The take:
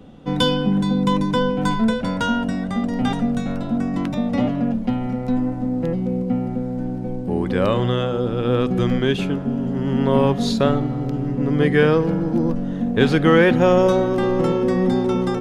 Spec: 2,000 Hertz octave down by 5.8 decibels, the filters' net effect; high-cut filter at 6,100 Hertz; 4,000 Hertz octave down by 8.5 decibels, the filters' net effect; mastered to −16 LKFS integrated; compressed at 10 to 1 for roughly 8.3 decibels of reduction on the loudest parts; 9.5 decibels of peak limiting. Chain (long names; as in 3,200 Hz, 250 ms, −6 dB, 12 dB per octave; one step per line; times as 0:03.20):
low-pass filter 6,100 Hz
parametric band 2,000 Hz −6.5 dB
parametric band 4,000 Hz −8 dB
downward compressor 10 to 1, threshold −19 dBFS
level +11.5 dB
brickwall limiter −7.5 dBFS